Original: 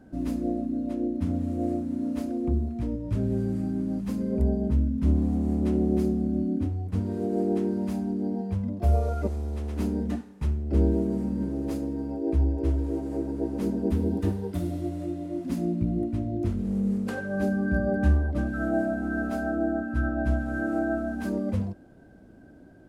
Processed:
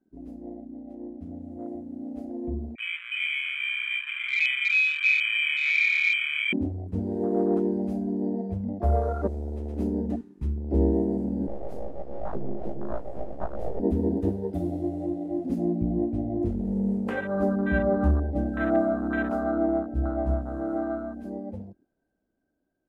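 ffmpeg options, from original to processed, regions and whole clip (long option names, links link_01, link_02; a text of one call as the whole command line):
ffmpeg -i in.wav -filter_complex "[0:a]asettb=1/sr,asplit=3[link_01][link_02][link_03];[link_01]atrim=end=2.754[link_04];[link_02]atrim=start=2.75:end=6.53,asetpts=PTS-STARTPTS,afade=type=in:duration=0.004:curve=qsin,afade=type=out:start_time=3.776:duration=0.004:curve=qsin,flanger=delay=2:depth=4.2:regen=40:speed=1.4:shape=sinusoidal,lowpass=frequency=2200:width_type=q:width=0.5098,lowpass=frequency=2200:width_type=q:width=0.6013,lowpass=frequency=2200:width_type=q:width=0.9,lowpass=frequency=2200:width_type=q:width=2.563,afreqshift=-2600[link_05];[link_03]atrim=start=6.526[link_06];[link_04][link_05]acrossfade=duration=0.004:curve1=hsin:curve2=qsin[link_07];[link_07][link_06]acrossfade=duration=0.004:curve1=qsin:curve2=hsin,asettb=1/sr,asplit=3[link_08][link_09][link_10];[link_08]atrim=end=11.474[link_11];[link_09]atrim=start=11.47:end=13.8,asetpts=PTS-STARTPTS,afade=type=in:duration=0.004:curve=qsin,afade=type=out:start_time=2.326:duration=0.004:curve=qsin,highpass=frequency=52:width=0.5412,highpass=frequency=52:width=1.3066,flanger=delay=18:depth=6.6:speed=1.4,aeval=exprs='abs(val(0))':channel_layout=same[link_12];[link_10]atrim=start=13.796[link_13];[link_11][link_12]acrossfade=duration=0.004:curve1=hsin:curve2=qsin[link_14];[link_14][link_13]acrossfade=duration=0.004:curve1=qsin:curve2=hsin,asettb=1/sr,asplit=3[link_15][link_16][link_17];[link_15]atrim=end=19.674[link_18];[link_16]atrim=start=19.67:end=20.77,asetpts=PTS-STARTPTS,afade=type=in:duration=0.004:curve=qsin,afade=type=out:start_time=1.096:duration=0.004:curve=qsin,equalizer=frequency=1700:width_type=o:width=1.1:gain=-5,asplit=2[link_19][link_20];[link_20]adelay=15,volume=-7.5dB[link_21];[link_19][link_21]amix=inputs=2:normalize=0,atrim=end_sample=48510[link_22];[link_17]atrim=start=20.766[link_23];[link_18][link_22]acrossfade=duration=0.004:curve1=hsin:curve2=qsin[link_24];[link_24][link_23]acrossfade=duration=0.004:curve1=qsin:curve2=hsin,afwtdn=0.0224,equalizer=frequency=110:width_type=o:width=2:gain=-9,dynaudnorm=framelen=510:gausssize=11:maxgain=15dB,volume=-8.5dB" out.wav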